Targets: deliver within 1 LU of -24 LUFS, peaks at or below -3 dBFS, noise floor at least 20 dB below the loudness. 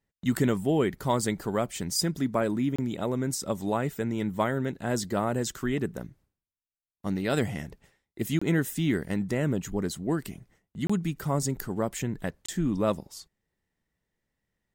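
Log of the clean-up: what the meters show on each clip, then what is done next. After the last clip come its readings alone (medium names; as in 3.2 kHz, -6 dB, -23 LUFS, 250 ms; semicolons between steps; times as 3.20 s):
dropouts 4; longest dropout 25 ms; loudness -29.0 LUFS; peak level -12.5 dBFS; loudness target -24.0 LUFS
-> interpolate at 2.76/8.39/10.87/12.46 s, 25 ms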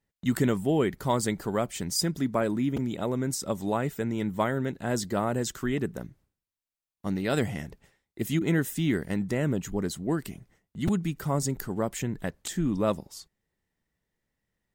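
dropouts 0; loudness -29.0 LUFS; peak level -12.5 dBFS; loudness target -24.0 LUFS
-> trim +5 dB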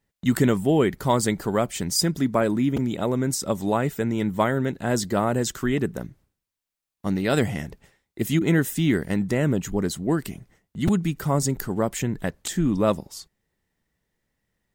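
loudness -24.0 LUFS; peak level -7.5 dBFS; noise floor -84 dBFS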